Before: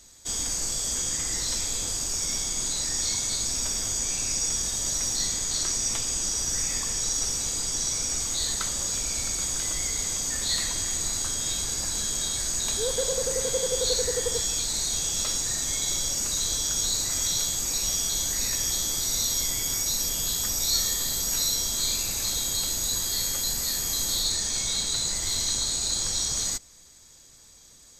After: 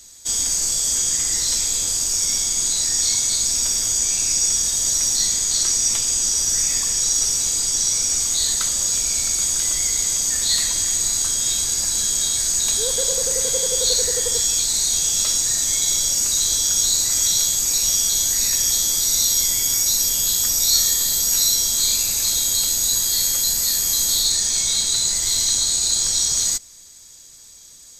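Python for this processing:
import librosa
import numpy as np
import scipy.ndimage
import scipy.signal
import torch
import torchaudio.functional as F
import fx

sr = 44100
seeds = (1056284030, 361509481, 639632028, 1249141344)

y = fx.high_shelf(x, sr, hz=2900.0, db=10.0)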